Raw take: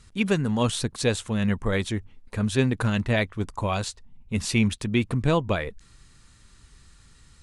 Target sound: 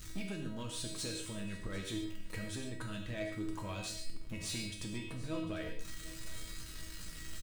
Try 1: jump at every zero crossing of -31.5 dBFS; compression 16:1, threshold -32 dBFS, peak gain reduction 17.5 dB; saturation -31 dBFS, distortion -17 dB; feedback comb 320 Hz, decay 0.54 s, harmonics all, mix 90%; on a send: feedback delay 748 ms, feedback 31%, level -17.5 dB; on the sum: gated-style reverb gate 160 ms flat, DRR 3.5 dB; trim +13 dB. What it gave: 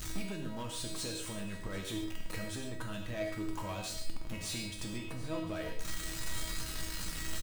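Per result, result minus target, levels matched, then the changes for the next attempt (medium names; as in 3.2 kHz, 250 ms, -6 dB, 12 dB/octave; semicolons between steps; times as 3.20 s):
jump at every zero crossing: distortion +9 dB; 1 kHz band +3.0 dB
change: jump at every zero crossing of -41.5 dBFS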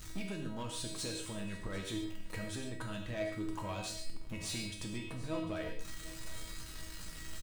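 1 kHz band +3.0 dB
add after compression: peaking EQ 810 Hz -6.5 dB 0.94 oct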